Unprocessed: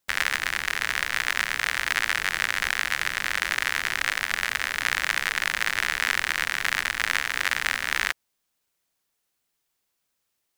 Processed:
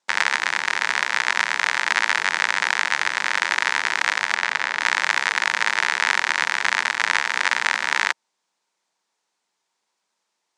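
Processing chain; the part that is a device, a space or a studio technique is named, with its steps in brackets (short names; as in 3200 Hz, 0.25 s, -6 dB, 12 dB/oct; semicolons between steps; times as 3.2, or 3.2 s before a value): 4.34–4.79 high shelf 10000 Hz -> 7000 Hz -11 dB; television speaker (speaker cabinet 190–7700 Hz, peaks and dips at 270 Hz -5 dB, 920 Hz +9 dB, 2900 Hz -3 dB); gain +4.5 dB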